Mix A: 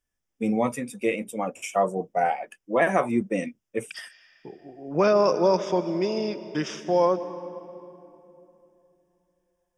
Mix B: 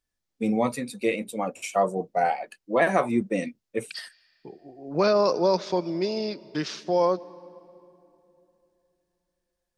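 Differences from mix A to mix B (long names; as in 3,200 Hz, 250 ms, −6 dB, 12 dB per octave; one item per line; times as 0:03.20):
second voice: send −9.5 dB
master: remove Butterworth band-reject 4,200 Hz, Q 2.9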